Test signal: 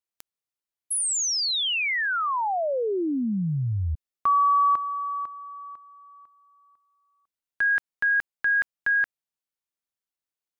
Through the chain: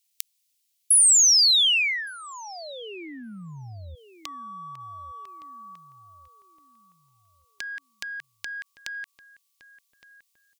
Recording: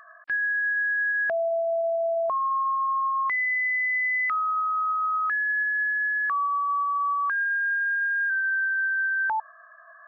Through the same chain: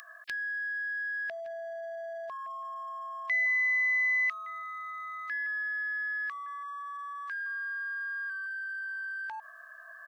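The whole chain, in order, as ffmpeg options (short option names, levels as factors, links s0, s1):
-filter_complex "[0:a]acompressor=threshold=0.02:ratio=8:attack=1:release=99:knee=1:detection=peak,aexciter=amount=6.2:drive=8.7:freq=2100,asplit=2[s0][s1];[s1]adelay=1165,lowpass=f=870:p=1,volume=0.251,asplit=2[s2][s3];[s3]adelay=1165,lowpass=f=870:p=1,volume=0.4,asplit=2[s4][s5];[s5]adelay=1165,lowpass=f=870:p=1,volume=0.4,asplit=2[s6][s7];[s7]adelay=1165,lowpass=f=870:p=1,volume=0.4[s8];[s2][s4][s6][s8]amix=inputs=4:normalize=0[s9];[s0][s9]amix=inputs=2:normalize=0,volume=0.631"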